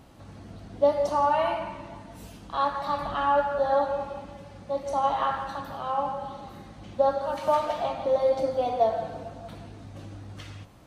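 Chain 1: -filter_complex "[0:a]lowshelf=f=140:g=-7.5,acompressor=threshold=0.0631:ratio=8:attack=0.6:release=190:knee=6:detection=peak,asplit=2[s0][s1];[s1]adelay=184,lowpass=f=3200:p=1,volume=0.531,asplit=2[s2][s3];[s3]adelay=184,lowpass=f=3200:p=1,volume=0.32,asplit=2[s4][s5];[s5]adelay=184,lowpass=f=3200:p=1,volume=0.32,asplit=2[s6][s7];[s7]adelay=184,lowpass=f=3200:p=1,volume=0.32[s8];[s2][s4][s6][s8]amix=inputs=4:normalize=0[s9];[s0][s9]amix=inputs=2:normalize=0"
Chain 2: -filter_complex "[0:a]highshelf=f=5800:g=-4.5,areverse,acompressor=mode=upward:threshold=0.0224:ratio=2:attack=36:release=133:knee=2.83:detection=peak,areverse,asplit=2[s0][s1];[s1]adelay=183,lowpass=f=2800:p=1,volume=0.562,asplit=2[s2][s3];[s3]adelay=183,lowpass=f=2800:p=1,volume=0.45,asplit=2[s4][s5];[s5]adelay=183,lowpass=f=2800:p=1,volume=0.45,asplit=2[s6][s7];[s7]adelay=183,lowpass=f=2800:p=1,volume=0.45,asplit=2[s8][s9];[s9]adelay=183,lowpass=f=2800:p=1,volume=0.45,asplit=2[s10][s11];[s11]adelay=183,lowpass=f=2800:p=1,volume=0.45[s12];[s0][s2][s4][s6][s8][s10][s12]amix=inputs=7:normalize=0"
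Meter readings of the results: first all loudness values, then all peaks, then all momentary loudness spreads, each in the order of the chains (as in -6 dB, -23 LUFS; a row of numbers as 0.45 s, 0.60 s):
-32.0 LUFS, -25.5 LUFS; -19.0 dBFS, -10.5 dBFS; 16 LU, 17 LU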